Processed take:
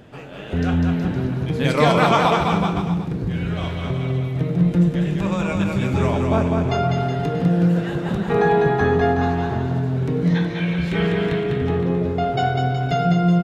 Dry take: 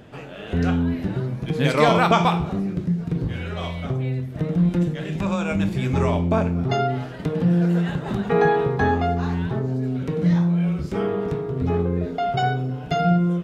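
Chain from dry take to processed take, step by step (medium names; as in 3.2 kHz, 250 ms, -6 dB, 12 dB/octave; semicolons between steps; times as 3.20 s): time-frequency box 10.35–11.43 s, 1.5–4.4 kHz +12 dB; bouncing-ball echo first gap 200 ms, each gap 0.85×, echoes 5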